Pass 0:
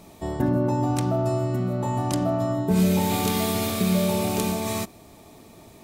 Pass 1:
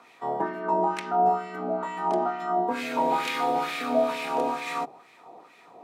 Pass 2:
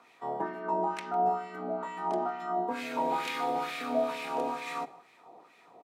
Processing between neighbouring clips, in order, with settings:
frequency shifter +63 Hz; auto-filter band-pass sine 2.2 Hz 690–2,200 Hz; mains-hum notches 50/100/150 Hz; level +8 dB
single-tap delay 153 ms −22 dB; level −5.5 dB

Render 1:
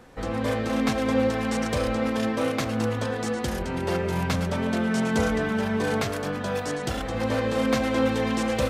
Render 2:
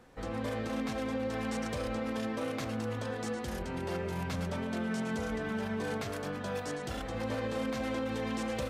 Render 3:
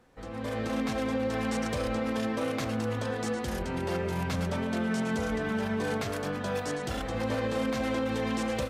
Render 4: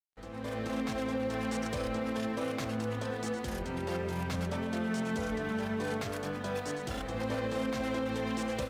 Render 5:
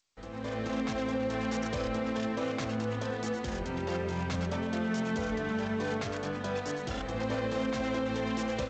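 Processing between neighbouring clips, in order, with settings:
brickwall limiter −18 dBFS, peak gain reduction 7.5 dB; level −8 dB
automatic gain control gain up to 8.5 dB; level −4 dB
dead-zone distortion −53.5 dBFS; level −3 dB
level +1.5 dB; G.722 64 kbit/s 16,000 Hz

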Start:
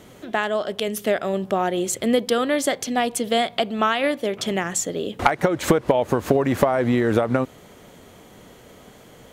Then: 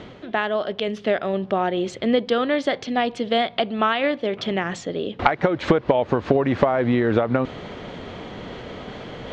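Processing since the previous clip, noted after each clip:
low-pass filter 4,300 Hz 24 dB per octave
reversed playback
upward compression, threshold −23 dBFS
reversed playback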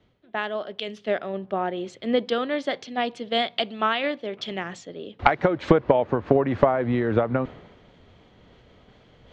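multiband upward and downward expander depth 100%
level −4 dB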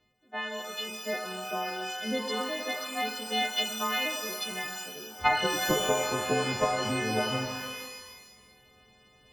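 every partial snapped to a pitch grid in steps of 3 semitones
reverb with rising layers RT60 1.2 s, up +12 semitones, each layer −2 dB, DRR 4.5 dB
level −8.5 dB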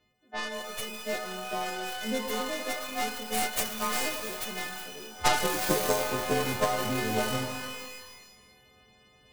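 stylus tracing distortion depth 0.47 ms

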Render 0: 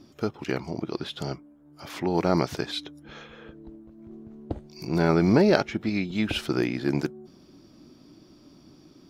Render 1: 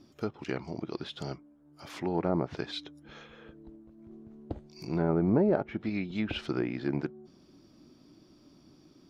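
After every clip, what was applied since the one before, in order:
treble cut that deepens with the level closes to 960 Hz, closed at −18 dBFS
level −5.5 dB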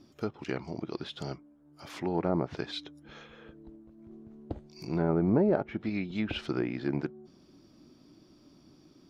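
no processing that can be heard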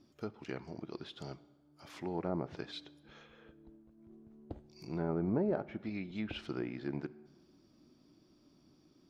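dense smooth reverb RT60 1.3 s, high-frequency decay 0.8×, DRR 17.5 dB
level −7.5 dB

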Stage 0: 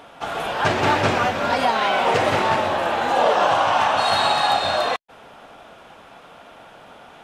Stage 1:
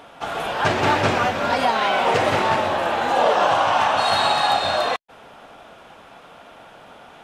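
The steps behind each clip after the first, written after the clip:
no processing that can be heard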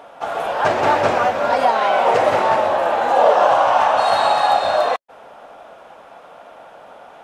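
drawn EQ curve 120 Hz 0 dB, 390 Hz +6 dB, 560 Hz +13 dB, 3,300 Hz +2 dB, 5,800 Hz +4 dB
level −6.5 dB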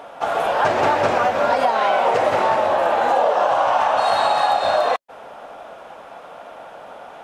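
downward compressor, threshold −17 dBFS, peak gain reduction 8.5 dB
level +3 dB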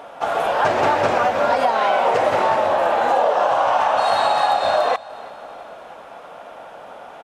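repeating echo 328 ms, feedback 52%, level −20.5 dB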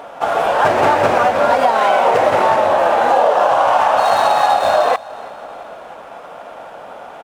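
running median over 9 samples
level +4.5 dB

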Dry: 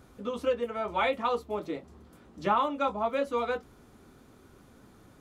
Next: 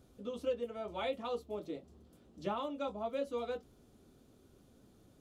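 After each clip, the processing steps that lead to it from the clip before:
flat-topped bell 1,400 Hz −8 dB
level −7 dB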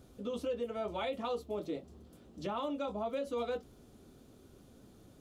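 brickwall limiter −33 dBFS, peak gain reduction 8.5 dB
level +5 dB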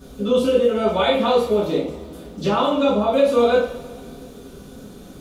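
coupled-rooms reverb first 0.47 s, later 2.2 s, from −18 dB, DRR −9.5 dB
level +8.5 dB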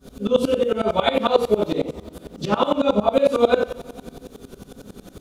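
tremolo with a ramp in dB swelling 11 Hz, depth 21 dB
level +5.5 dB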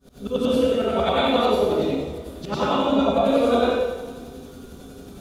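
dense smooth reverb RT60 0.97 s, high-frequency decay 0.95×, pre-delay 90 ms, DRR −7.5 dB
level −8 dB

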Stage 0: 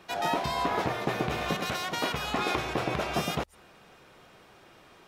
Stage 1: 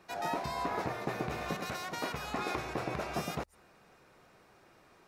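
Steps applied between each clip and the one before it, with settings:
parametric band 3,200 Hz −8 dB 0.41 octaves
level −6 dB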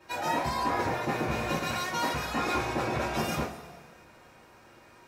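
coupled-rooms reverb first 0.28 s, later 1.7 s, from −17 dB, DRR −9 dB
level −2.5 dB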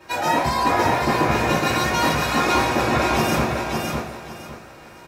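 repeating echo 558 ms, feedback 25%, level −4 dB
level +9 dB

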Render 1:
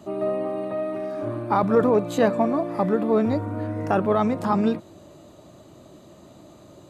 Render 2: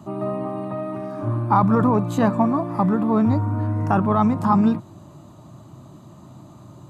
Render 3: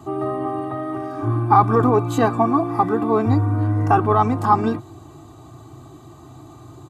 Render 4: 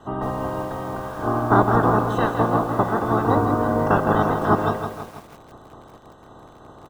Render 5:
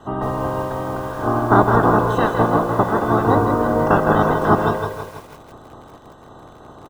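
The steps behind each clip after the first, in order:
octave-band graphic EQ 125/250/500/1,000/2,000/4,000 Hz +12/+3/−9/+9/−4/−3 dB
comb filter 2.6 ms, depth 88%; level +1.5 dB
ceiling on every frequency bin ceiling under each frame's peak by 27 dB; moving average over 19 samples; feedback echo at a low word length 162 ms, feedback 55%, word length 7 bits, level −7 dB
single-tap delay 160 ms −10 dB; level +3 dB

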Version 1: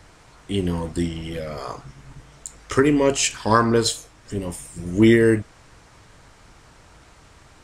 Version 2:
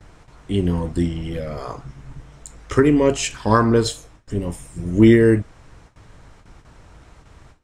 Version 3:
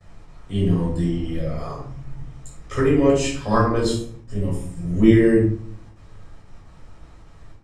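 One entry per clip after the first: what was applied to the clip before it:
notch filter 4,600 Hz, Q 25; noise gate with hold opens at −40 dBFS; spectral tilt −1.5 dB per octave
rectangular room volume 590 cubic metres, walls furnished, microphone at 6.1 metres; level −11 dB

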